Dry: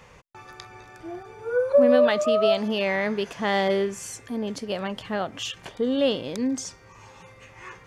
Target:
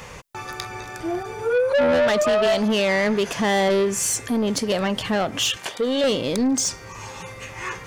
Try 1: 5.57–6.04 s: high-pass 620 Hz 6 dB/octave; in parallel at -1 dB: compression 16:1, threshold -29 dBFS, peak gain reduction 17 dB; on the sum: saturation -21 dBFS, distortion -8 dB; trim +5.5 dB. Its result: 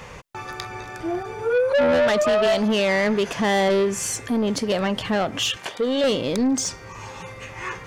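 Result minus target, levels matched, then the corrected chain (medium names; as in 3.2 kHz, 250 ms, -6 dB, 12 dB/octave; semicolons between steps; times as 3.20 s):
8 kHz band -3.5 dB
5.57–6.04 s: high-pass 620 Hz 6 dB/octave; in parallel at -1 dB: compression 16:1, threshold -29 dBFS, peak gain reduction 17 dB + treble shelf 4.1 kHz +12 dB; on the sum: saturation -21 dBFS, distortion -9 dB; trim +5.5 dB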